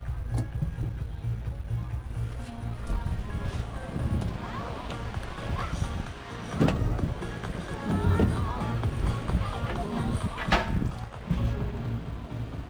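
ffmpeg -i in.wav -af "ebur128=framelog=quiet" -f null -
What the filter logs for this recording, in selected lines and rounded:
Integrated loudness:
  I:         -31.3 LUFS
  Threshold: -41.3 LUFS
Loudness range:
  LRA:         5.4 LU
  Threshold: -51.1 LUFS
  LRA low:   -34.1 LUFS
  LRA high:  -28.7 LUFS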